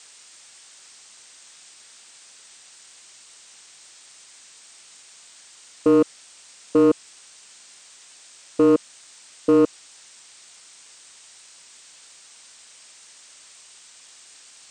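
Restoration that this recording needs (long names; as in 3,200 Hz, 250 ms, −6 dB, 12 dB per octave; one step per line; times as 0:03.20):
clipped peaks rebuilt −11 dBFS
noise reduction from a noise print 30 dB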